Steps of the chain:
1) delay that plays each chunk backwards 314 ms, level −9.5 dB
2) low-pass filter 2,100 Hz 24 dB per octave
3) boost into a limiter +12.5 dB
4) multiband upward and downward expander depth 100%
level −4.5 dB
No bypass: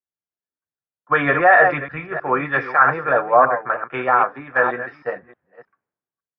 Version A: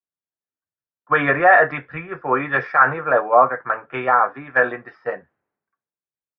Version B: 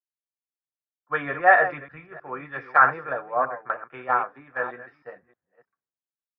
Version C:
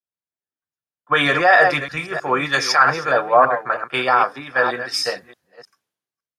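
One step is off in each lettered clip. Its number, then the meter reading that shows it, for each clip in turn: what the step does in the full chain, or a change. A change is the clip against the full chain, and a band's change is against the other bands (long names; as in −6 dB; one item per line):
1, change in momentary loudness spread +2 LU
3, change in crest factor +5.0 dB
2, change in momentary loudness spread −5 LU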